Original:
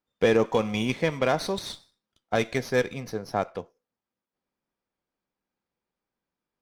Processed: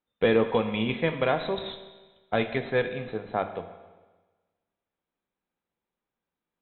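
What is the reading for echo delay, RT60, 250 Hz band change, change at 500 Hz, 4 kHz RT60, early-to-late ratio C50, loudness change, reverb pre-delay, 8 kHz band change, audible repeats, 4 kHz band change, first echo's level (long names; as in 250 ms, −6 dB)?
no echo audible, 1.3 s, −0.5 dB, −0.5 dB, 1.3 s, 10.5 dB, −1.0 dB, 13 ms, below −35 dB, no echo audible, −1.5 dB, no echo audible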